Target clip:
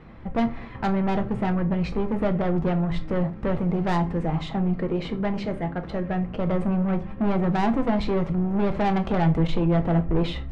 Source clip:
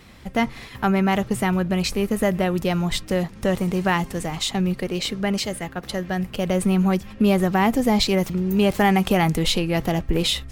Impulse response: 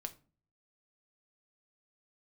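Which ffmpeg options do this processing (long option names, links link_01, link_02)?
-filter_complex "[0:a]lowpass=1400,asoftclip=type=tanh:threshold=-22dB[link_01];[1:a]atrim=start_sample=2205[link_02];[link_01][link_02]afir=irnorm=-1:irlink=0,volume=5.5dB"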